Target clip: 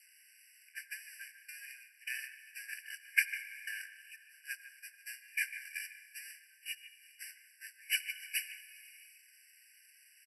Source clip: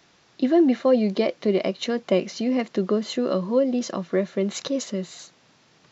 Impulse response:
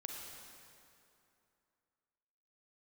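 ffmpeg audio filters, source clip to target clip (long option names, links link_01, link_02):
-filter_complex "[0:a]aeval=exprs='val(0)+0.5*0.0251*sgn(val(0))':channel_layout=same,lowpass=frequency=3800:poles=1,aemphasis=mode=production:type=riaa,agate=range=-34dB:threshold=-22dB:ratio=16:detection=peak,adynamicequalizer=threshold=0.0224:dfrequency=390:dqfactor=0.82:tfrequency=390:tqfactor=0.82:attack=5:release=100:ratio=0.375:range=3:mode=boostabove:tftype=bell,alimiter=limit=-16dB:level=0:latency=1:release=275,acompressor=threshold=-29dB:ratio=6,asplit=2[link_01][link_02];[1:a]atrim=start_sample=2205,afade=type=out:start_time=0.43:duration=0.01,atrim=end_sample=19404[link_03];[link_02][link_03]afir=irnorm=-1:irlink=0,volume=-4.5dB[link_04];[link_01][link_04]amix=inputs=2:normalize=0,asetrate=25442,aresample=44100,asplit=2[link_05][link_06];[link_06]adelay=150,highpass=300,lowpass=3400,asoftclip=type=hard:threshold=-23.5dB,volume=-12dB[link_07];[link_05][link_07]amix=inputs=2:normalize=0,afftfilt=real='re*eq(mod(floor(b*sr/1024/1500),2),1)':imag='im*eq(mod(floor(b*sr/1024/1500),2),1)':win_size=1024:overlap=0.75,volume=4dB"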